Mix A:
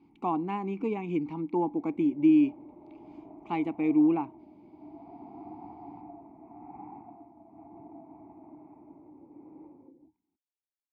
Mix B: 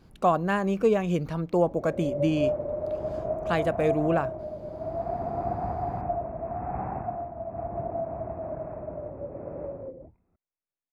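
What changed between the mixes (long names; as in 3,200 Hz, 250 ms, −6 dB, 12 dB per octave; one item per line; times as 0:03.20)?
speech −8.5 dB
master: remove formant filter u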